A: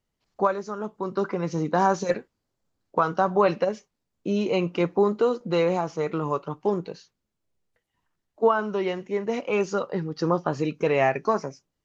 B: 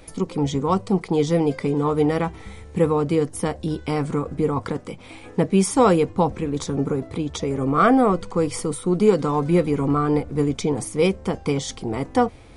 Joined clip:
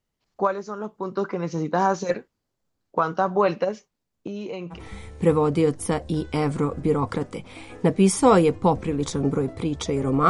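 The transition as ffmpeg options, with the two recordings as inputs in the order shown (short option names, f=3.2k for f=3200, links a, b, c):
-filter_complex "[0:a]asettb=1/sr,asplit=3[a][b][c];[a]atrim=end=4.274[d];[b]atrim=start=4.27:end=4.82,asetpts=PTS-STARTPTS,afade=t=in:d=0.004:c=qsin,afade=t=out:st=0.546:d=0.004:c=qsin,acompressor=threshold=-29dB:ratio=6:attack=3.2:release=140:knee=1:detection=peak[e];[c]atrim=start=4.816[f];[d][e]acrossfade=d=0.004:c1=hsin:c2=qsin[g];[g][f]acrossfade=d=0.004:c1=qsin:c2=hsin,apad=whole_dur=10.29,atrim=end=10.29,atrim=end=4.82,asetpts=PTS-STARTPTS[h];[1:a]atrim=start=2.24:end=7.83,asetpts=PTS-STARTPTS[i];[h][i]acrossfade=d=0.12:c1=tri:c2=tri"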